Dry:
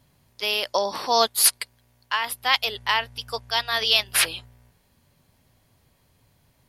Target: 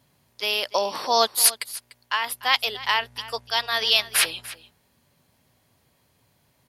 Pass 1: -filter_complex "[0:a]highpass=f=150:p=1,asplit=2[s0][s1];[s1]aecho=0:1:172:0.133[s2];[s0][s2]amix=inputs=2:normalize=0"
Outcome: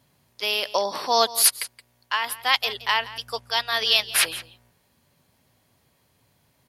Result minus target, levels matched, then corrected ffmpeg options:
echo 123 ms early
-filter_complex "[0:a]highpass=f=150:p=1,asplit=2[s0][s1];[s1]aecho=0:1:295:0.133[s2];[s0][s2]amix=inputs=2:normalize=0"

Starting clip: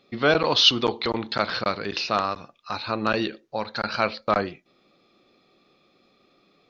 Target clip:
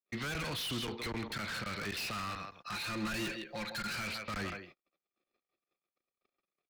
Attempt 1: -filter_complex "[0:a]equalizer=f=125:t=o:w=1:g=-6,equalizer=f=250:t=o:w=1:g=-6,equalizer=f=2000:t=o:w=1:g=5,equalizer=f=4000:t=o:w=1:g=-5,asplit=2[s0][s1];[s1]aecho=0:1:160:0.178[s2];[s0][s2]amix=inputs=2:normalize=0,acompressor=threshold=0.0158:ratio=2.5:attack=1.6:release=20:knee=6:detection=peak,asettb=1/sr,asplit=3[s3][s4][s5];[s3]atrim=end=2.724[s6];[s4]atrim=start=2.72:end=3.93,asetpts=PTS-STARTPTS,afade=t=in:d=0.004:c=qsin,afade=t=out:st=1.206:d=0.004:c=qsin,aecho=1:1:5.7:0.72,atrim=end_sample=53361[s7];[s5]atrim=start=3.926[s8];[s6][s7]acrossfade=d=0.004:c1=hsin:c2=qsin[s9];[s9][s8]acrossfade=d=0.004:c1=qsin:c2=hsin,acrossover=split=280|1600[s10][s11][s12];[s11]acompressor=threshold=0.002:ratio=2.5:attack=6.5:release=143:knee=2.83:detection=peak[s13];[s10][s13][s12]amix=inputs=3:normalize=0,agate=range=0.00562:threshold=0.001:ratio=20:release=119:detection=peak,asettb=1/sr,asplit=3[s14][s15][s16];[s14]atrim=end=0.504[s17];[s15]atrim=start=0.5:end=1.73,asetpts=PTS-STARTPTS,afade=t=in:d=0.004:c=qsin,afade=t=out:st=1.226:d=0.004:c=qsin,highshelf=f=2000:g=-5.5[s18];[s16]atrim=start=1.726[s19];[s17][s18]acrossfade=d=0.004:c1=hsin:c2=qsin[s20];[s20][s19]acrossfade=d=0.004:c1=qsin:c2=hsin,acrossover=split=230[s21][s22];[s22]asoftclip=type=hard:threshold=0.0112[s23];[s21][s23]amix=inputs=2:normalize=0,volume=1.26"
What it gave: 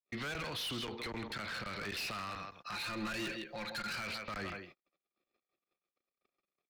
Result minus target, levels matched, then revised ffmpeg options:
compression: peak gain reduction +7 dB
-filter_complex "[0:a]equalizer=f=125:t=o:w=1:g=-6,equalizer=f=250:t=o:w=1:g=-6,equalizer=f=2000:t=o:w=1:g=5,equalizer=f=4000:t=o:w=1:g=-5,asplit=2[s0][s1];[s1]aecho=0:1:160:0.178[s2];[s0][s2]amix=inputs=2:normalize=0,acompressor=threshold=0.0596:ratio=2.5:attack=1.6:release=20:knee=6:detection=peak,asettb=1/sr,asplit=3[s3][s4][s5];[s3]atrim=end=2.724[s6];[s4]atrim=start=2.72:end=3.93,asetpts=PTS-STARTPTS,afade=t=in:d=0.004:c=qsin,afade=t=out:st=1.206:d=0.004:c=qsin,aecho=1:1:5.7:0.72,atrim=end_sample=53361[s7];[s5]atrim=start=3.926[s8];[s6][s7]acrossfade=d=0.004:c1=hsin:c2=qsin[s9];[s9][s8]acrossfade=d=0.004:c1=qsin:c2=hsin,acrossover=split=280|1600[s10][s11][s12];[s11]acompressor=threshold=0.002:ratio=2.5:attack=6.5:release=143:knee=2.83:detection=peak[s13];[s10][s13][s12]amix=inputs=3:normalize=0,agate=range=0.00562:threshold=0.001:ratio=20:release=119:detection=peak,asettb=1/sr,asplit=3[s14][s15][s16];[s14]atrim=end=0.504[s17];[s15]atrim=start=0.5:end=1.73,asetpts=PTS-STARTPTS,afade=t=in:d=0.004:c=qsin,afade=t=out:st=1.226:d=0.004:c=qsin,highshelf=f=2000:g=-5.5[s18];[s16]atrim=start=1.726[s19];[s17][s18]acrossfade=d=0.004:c1=hsin:c2=qsin[s20];[s20][s19]acrossfade=d=0.004:c1=qsin:c2=hsin,acrossover=split=230[s21][s22];[s22]asoftclip=type=hard:threshold=0.0112[s23];[s21][s23]amix=inputs=2:normalize=0,volume=1.26"

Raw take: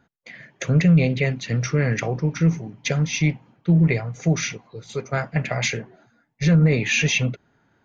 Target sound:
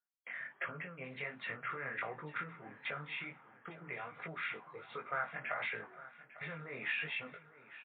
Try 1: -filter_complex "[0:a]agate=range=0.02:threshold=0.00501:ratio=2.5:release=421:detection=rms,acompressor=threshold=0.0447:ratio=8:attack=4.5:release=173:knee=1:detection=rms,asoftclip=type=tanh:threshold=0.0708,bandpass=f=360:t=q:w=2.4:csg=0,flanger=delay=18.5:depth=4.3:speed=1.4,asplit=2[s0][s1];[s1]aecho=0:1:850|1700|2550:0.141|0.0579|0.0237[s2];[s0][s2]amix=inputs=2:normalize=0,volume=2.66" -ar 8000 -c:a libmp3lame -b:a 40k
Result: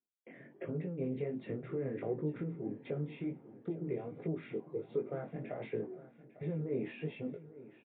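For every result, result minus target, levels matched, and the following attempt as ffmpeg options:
1 kHz band -12.0 dB; saturation: distortion +10 dB
-filter_complex "[0:a]agate=range=0.02:threshold=0.00501:ratio=2.5:release=421:detection=rms,acompressor=threshold=0.0447:ratio=8:attack=4.5:release=173:knee=1:detection=rms,asoftclip=type=tanh:threshold=0.0708,bandpass=f=1300:t=q:w=2.4:csg=0,flanger=delay=18.5:depth=4.3:speed=1.4,asplit=2[s0][s1];[s1]aecho=0:1:850|1700|2550:0.141|0.0579|0.0237[s2];[s0][s2]amix=inputs=2:normalize=0,volume=2.66" -ar 8000 -c:a libmp3lame -b:a 40k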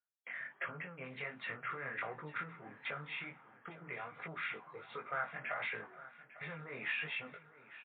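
saturation: distortion +10 dB
-filter_complex "[0:a]agate=range=0.02:threshold=0.00501:ratio=2.5:release=421:detection=rms,acompressor=threshold=0.0447:ratio=8:attack=4.5:release=173:knee=1:detection=rms,asoftclip=type=tanh:threshold=0.141,bandpass=f=1300:t=q:w=2.4:csg=0,flanger=delay=18.5:depth=4.3:speed=1.4,asplit=2[s0][s1];[s1]aecho=0:1:850|1700|2550:0.141|0.0579|0.0237[s2];[s0][s2]amix=inputs=2:normalize=0,volume=2.66" -ar 8000 -c:a libmp3lame -b:a 40k

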